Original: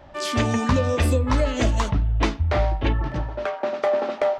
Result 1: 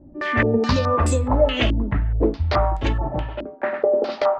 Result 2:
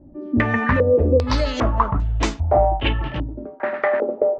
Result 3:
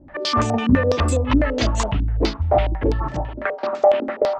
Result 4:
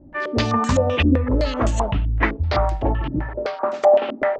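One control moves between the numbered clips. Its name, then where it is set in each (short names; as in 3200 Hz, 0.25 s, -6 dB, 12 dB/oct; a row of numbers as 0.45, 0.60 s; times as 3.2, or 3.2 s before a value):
stepped low-pass, rate: 4.7, 2.5, 12, 7.8 Hz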